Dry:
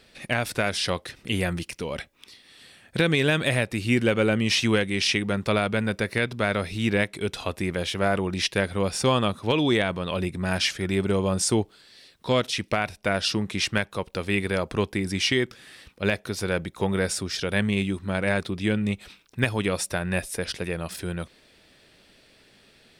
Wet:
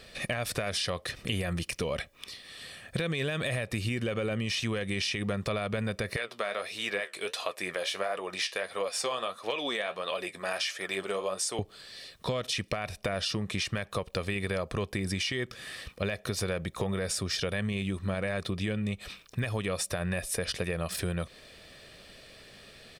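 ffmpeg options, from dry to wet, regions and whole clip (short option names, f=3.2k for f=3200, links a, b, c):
-filter_complex "[0:a]asettb=1/sr,asplit=3[a][b][c];[a]atrim=end=6.164[d];[b]atrim=start=6.16:end=11.59,asetpts=PTS-STARTPTS,afade=t=in:d=0.004:c=qsin,afade=t=out:st=5.426:d=0.004:c=qsin,highpass=510,flanger=delay=5.8:depth=9.7:regen=54:speed=1.5:shape=triangular[e];[c]atrim=start=11.586[f];[d][e]acrossfade=d=0.004:c1=hsin:c2=qsin[g];[g][f]acrossfade=d=0.004:c1=qsin:c2=hsin,aecho=1:1:1.7:0.38,alimiter=limit=-17.5dB:level=0:latency=1:release=61,acompressor=threshold=-33dB:ratio=6,volume=4.5dB"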